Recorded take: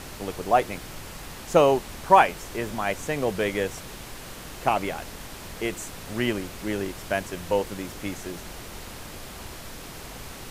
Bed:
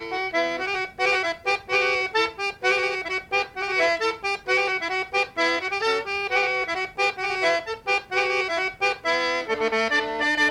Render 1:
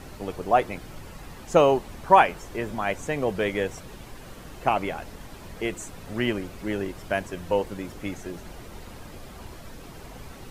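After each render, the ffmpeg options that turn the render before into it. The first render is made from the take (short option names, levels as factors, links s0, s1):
-af "afftdn=nr=9:nf=-41"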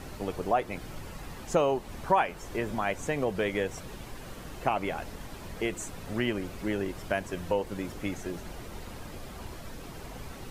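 -af "acompressor=threshold=0.0447:ratio=2"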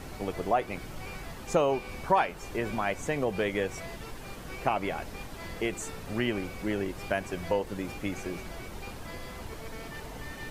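-filter_complex "[1:a]volume=0.0668[s0];[0:a][s0]amix=inputs=2:normalize=0"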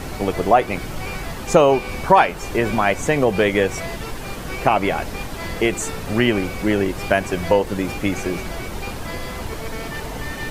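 -af "volume=3.98,alimiter=limit=0.891:level=0:latency=1"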